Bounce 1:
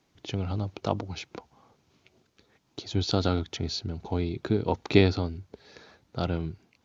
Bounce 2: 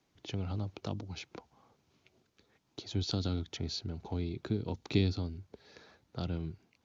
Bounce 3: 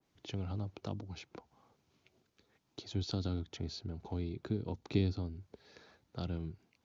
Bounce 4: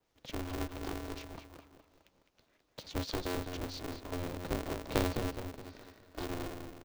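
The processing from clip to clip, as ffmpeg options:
-filter_complex "[0:a]acrossover=split=320|3000[s0][s1][s2];[s1]acompressor=threshold=0.0141:ratio=6[s3];[s0][s3][s2]amix=inputs=3:normalize=0,volume=0.531"
-af "adynamicequalizer=threshold=0.00158:dfrequency=1700:dqfactor=0.7:tfrequency=1700:tqfactor=0.7:attack=5:release=100:ratio=0.375:range=3.5:mode=cutabove:tftype=highshelf,volume=0.75"
-filter_complex "[0:a]highpass=f=79:w=0.5412,highpass=f=79:w=1.3066,asplit=2[s0][s1];[s1]adelay=209,lowpass=f=3100:p=1,volume=0.531,asplit=2[s2][s3];[s3]adelay=209,lowpass=f=3100:p=1,volume=0.45,asplit=2[s4][s5];[s5]adelay=209,lowpass=f=3100:p=1,volume=0.45,asplit=2[s6][s7];[s7]adelay=209,lowpass=f=3100:p=1,volume=0.45,asplit=2[s8][s9];[s9]adelay=209,lowpass=f=3100:p=1,volume=0.45[s10];[s2][s4][s6][s8][s10]amix=inputs=5:normalize=0[s11];[s0][s11]amix=inputs=2:normalize=0,aeval=exprs='val(0)*sgn(sin(2*PI*180*n/s))':c=same"

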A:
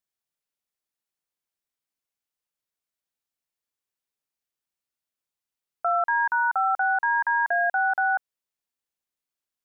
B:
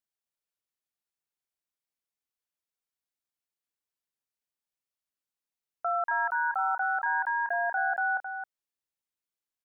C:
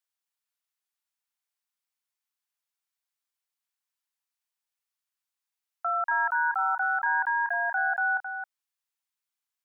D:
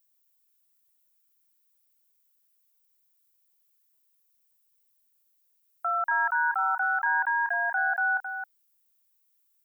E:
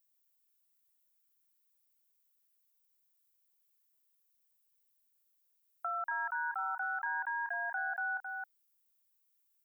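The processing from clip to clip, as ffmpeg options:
-af "aecho=1:1:266:0.398,volume=0.531"
-af "highpass=f=790:w=0.5412,highpass=f=790:w=1.3066,volume=1.41"
-af "aemphasis=mode=production:type=bsi"
-af "acompressor=threshold=0.0282:ratio=2,volume=0.531"

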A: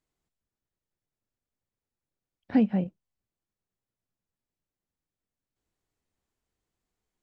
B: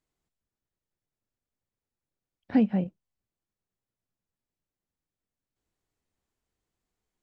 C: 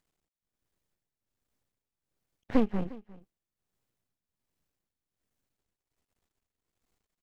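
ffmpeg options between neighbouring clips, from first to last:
-af anull
-af "aeval=exprs='max(val(0),0)':c=same,tremolo=f=1.3:d=0.7,aecho=1:1:354:0.0944,volume=2.66"

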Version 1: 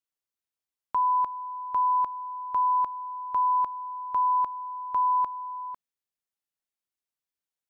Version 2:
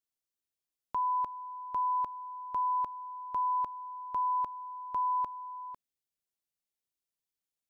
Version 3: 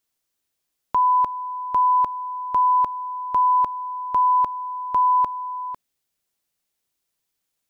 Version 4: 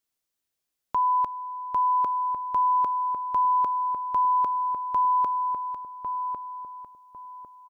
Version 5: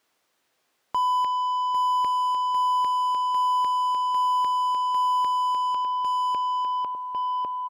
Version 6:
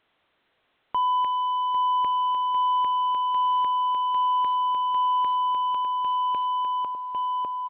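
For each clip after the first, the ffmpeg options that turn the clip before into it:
-af "equalizer=f=1300:t=o:w=1.9:g=-7.5"
-af "acontrast=79,volume=1.88"
-filter_complex "[0:a]asplit=2[s0][s1];[s1]adelay=1101,lowpass=f=900:p=1,volume=0.631,asplit=2[s2][s3];[s3]adelay=1101,lowpass=f=900:p=1,volume=0.35,asplit=2[s4][s5];[s5]adelay=1101,lowpass=f=900:p=1,volume=0.35,asplit=2[s6][s7];[s7]adelay=1101,lowpass=f=900:p=1,volume=0.35[s8];[s0][s2][s4][s6][s8]amix=inputs=5:normalize=0,volume=0.562"
-filter_complex "[0:a]asplit=2[s0][s1];[s1]highpass=f=720:p=1,volume=35.5,asoftclip=type=tanh:threshold=0.15[s2];[s0][s2]amix=inputs=2:normalize=0,lowpass=f=1100:p=1,volume=0.501"
-ar 8000 -c:a pcm_alaw

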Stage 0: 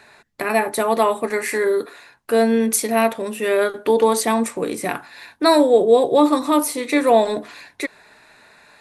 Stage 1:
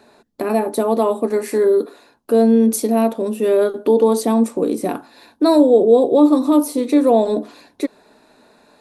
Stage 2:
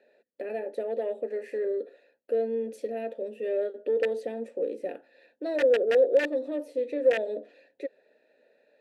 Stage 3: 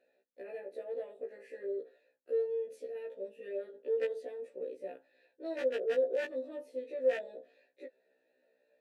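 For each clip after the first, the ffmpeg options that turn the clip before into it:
-filter_complex "[0:a]equalizer=f=125:t=o:w=1:g=-5,equalizer=f=250:t=o:w=1:g=10,equalizer=f=500:t=o:w=1:g=4,equalizer=f=2000:t=o:w=1:g=-12,equalizer=f=8000:t=o:w=1:g=-4,asplit=2[s0][s1];[s1]alimiter=limit=0.376:level=0:latency=1:release=155,volume=1[s2];[s0][s2]amix=inputs=2:normalize=0,volume=0.473"
-filter_complex "[0:a]acontrast=32,aeval=exprs='(mod(1.26*val(0)+1,2)-1)/1.26':c=same,asplit=3[s0][s1][s2];[s0]bandpass=f=530:t=q:w=8,volume=1[s3];[s1]bandpass=f=1840:t=q:w=8,volume=0.501[s4];[s2]bandpass=f=2480:t=q:w=8,volume=0.355[s5];[s3][s4][s5]amix=inputs=3:normalize=0,volume=0.447"
-af "afftfilt=real='re*1.73*eq(mod(b,3),0)':imag='im*1.73*eq(mod(b,3),0)':win_size=2048:overlap=0.75,volume=0.447"

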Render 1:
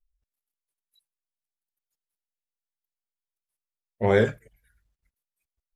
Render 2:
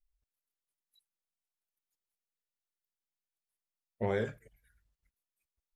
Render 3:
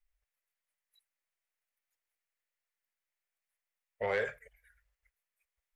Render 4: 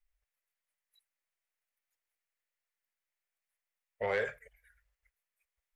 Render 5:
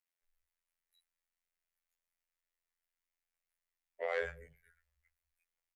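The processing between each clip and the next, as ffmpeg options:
-af "acompressor=threshold=0.0447:ratio=3,volume=0.631"
-af "equalizer=f=125:t=o:w=1:g=-12,equalizer=f=250:t=o:w=1:g=-11,equalizer=f=500:t=o:w=1:g=8,equalizer=f=2000:t=o:w=1:g=11,equalizer=f=4000:t=o:w=1:g=-3,asoftclip=type=tanh:threshold=0.1,equalizer=f=310:w=2.3:g=-13"
-af anull
-filter_complex "[0:a]afftfilt=real='hypot(re,im)*cos(PI*b)':imag='0':win_size=2048:overlap=0.75,acrossover=split=270[s0][s1];[s0]adelay=210[s2];[s2][s1]amix=inputs=2:normalize=0,afreqshift=-14"

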